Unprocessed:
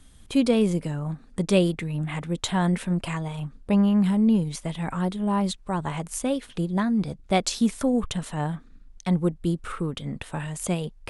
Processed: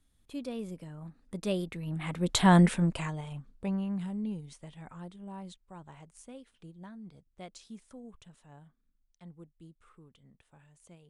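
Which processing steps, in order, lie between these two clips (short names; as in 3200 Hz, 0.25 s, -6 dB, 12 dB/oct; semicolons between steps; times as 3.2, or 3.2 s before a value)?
Doppler pass-by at 2.53, 13 m/s, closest 2.5 m; gain +3.5 dB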